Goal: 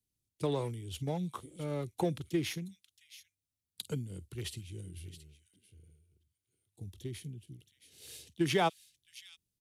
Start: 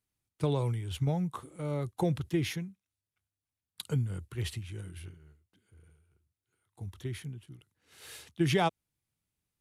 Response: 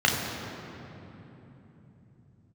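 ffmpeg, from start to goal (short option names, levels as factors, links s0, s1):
-filter_complex "[0:a]acrossover=split=200|560|2600[s0][s1][s2][s3];[s0]acompressor=threshold=0.00708:ratio=6[s4];[s2]aeval=exprs='sgn(val(0))*max(abs(val(0))-0.00335,0)':c=same[s5];[s3]aecho=1:1:47|672:0.106|0.251[s6];[s4][s1][s5][s6]amix=inputs=4:normalize=0"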